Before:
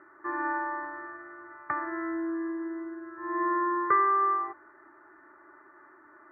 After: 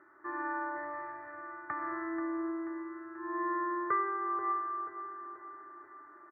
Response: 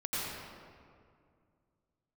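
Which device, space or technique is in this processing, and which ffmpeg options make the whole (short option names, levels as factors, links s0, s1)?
ducked reverb: -filter_complex "[0:a]asettb=1/sr,asplit=3[s0][s1][s2];[s0]atrim=end=0.764[s3];[s1]atrim=start=0.76:end=1.42,asetpts=PTS-STARTPTS,afade=t=in:d=0.004:c=qsin,afade=t=out:st=0.656:d=0.004:c=qsin,equalizer=f=125:t=o:w=1:g=10,equalizer=f=250:t=o:w=1:g=-9,equalizer=f=500:t=o:w=1:g=7,equalizer=f=1000:t=o:w=1:g=-4,equalizer=f=2000:t=o:w=1:g=8[s4];[s2]atrim=start=1.416[s5];[s3][s4]acrossfade=d=0.004:c1=hsin:c2=qsin[s6];[s6][s5]acrossfade=d=0.004:c1=qsin:c2=hsin,asplit=3[s7][s8][s9];[1:a]atrim=start_sample=2205[s10];[s8][s10]afir=irnorm=-1:irlink=0[s11];[s9]apad=whole_len=278385[s12];[s11][s12]sidechaincompress=threshold=0.0316:ratio=8:attack=6.7:release=184,volume=0.355[s13];[s7][s13]amix=inputs=2:normalize=0,aecho=1:1:484|968|1452|1936|2420|2904:0.282|0.149|0.0792|0.042|0.0222|0.0118,volume=0.422"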